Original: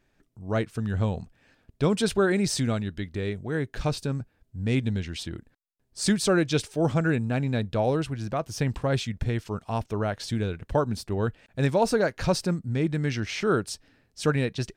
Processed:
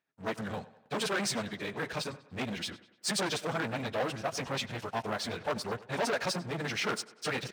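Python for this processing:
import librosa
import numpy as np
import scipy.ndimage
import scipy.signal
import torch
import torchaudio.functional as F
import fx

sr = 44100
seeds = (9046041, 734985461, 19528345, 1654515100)

p1 = fx.stretch_vocoder_free(x, sr, factor=0.51)
p2 = 10.0 ** (-26.0 / 20.0) * (np.abs((p1 / 10.0 ** (-26.0 / 20.0) + 3.0) % 4.0 - 2.0) - 1.0)
p3 = p1 + (p2 * librosa.db_to_amplitude(-5.0))
p4 = fx.high_shelf(p3, sr, hz=8200.0, db=-10.0)
p5 = fx.leveller(p4, sr, passes=3)
p6 = scipy.signal.sosfilt(scipy.signal.butter(2, 250.0, 'highpass', fs=sr, output='sos'), p5)
p7 = fx.peak_eq(p6, sr, hz=330.0, db=-8.0, octaves=1.2)
p8 = p7 + fx.echo_tape(p7, sr, ms=98, feedback_pct=53, wet_db=-16.0, lp_hz=4300.0, drive_db=18.0, wow_cents=15, dry=0)
y = p8 * librosa.db_to_amplitude(-8.0)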